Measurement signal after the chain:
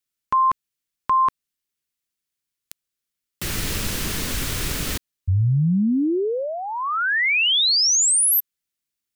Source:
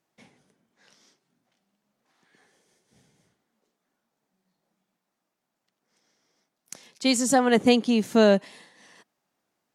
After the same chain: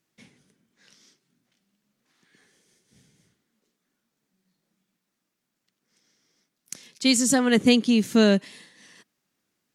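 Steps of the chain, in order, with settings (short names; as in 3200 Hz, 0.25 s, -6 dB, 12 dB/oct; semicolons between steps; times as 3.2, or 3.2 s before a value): bell 760 Hz -11.5 dB 1.4 oct; gain +4 dB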